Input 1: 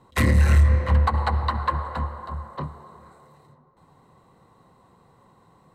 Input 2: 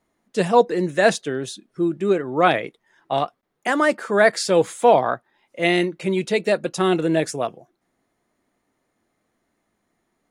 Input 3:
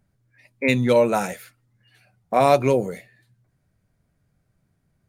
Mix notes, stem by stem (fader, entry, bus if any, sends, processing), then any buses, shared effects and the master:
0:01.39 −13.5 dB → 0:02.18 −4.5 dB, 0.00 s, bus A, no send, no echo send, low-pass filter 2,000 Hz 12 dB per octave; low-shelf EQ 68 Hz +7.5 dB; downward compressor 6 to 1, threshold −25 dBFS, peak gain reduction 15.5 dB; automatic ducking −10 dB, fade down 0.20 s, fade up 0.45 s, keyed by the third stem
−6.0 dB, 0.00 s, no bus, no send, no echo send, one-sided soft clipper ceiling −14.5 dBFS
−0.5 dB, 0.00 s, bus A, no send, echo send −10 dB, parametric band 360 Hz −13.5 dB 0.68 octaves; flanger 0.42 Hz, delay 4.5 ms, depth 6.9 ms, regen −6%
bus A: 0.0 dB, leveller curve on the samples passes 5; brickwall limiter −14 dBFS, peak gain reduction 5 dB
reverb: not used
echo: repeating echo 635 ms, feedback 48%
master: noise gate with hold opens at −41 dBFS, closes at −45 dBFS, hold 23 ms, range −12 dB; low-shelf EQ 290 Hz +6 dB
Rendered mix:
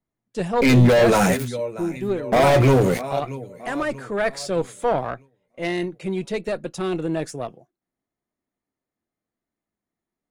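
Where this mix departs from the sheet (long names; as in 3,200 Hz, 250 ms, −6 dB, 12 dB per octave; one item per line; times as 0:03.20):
stem 1: muted
stem 3: missing parametric band 360 Hz −13.5 dB 0.68 octaves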